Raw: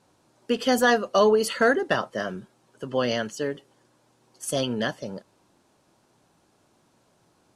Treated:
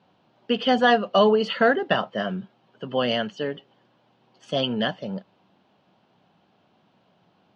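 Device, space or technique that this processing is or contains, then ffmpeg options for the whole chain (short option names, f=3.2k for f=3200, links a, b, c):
guitar cabinet: -af "highpass=94,equalizer=f=190:t=q:w=4:g=8,equalizer=f=330:t=q:w=4:g=-3,equalizer=f=730:t=q:w=4:g=5,equalizer=f=3k:t=q:w=4:g=7,lowpass=f=4.1k:w=0.5412,lowpass=f=4.1k:w=1.3066"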